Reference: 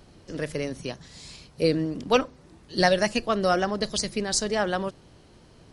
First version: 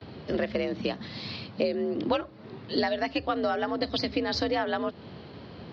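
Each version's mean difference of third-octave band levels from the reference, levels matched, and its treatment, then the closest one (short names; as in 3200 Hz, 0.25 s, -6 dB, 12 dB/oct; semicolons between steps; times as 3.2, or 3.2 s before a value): 8.5 dB: steep low-pass 4500 Hz 48 dB/oct; gate with hold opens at -46 dBFS; compressor 12:1, threshold -33 dBFS, peak gain reduction 18.5 dB; frequency shift +60 Hz; gain +9 dB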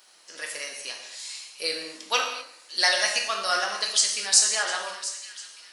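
12.5 dB: HPF 1100 Hz 12 dB/oct; high shelf 5200 Hz +11 dB; split-band echo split 1900 Hz, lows 85 ms, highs 0.7 s, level -14.5 dB; non-linear reverb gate 0.28 s falling, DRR 0.5 dB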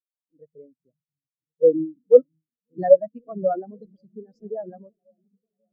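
19.5 dB: low-pass opened by the level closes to 950 Hz, open at -19.5 dBFS; in parallel at 0 dB: limiter -16.5 dBFS, peak gain reduction 10 dB; on the sum: repeats that get brighter 0.539 s, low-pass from 200 Hz, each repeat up 1 oct, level -6 dB; spectral expander 4:1; gain +2 dB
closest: first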